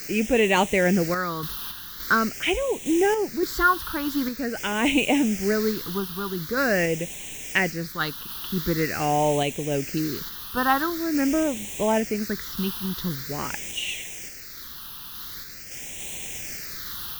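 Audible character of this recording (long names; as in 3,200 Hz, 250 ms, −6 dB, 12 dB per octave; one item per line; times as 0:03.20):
a quantiser's noise floor 6 bits, dither triangular
sample-and-hold tremolo
phaser sweep stages 6, 0.45 Hz, lowest notch 580–1,300 Hz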